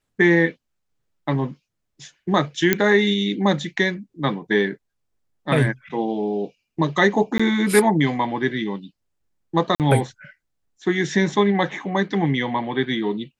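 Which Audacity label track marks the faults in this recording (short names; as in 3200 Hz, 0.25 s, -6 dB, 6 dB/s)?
2.730000	2.730000	pop -2 dBFS
7.380000	7.390000	gap 15 ms
9.750000	9.800000	gap 48 ms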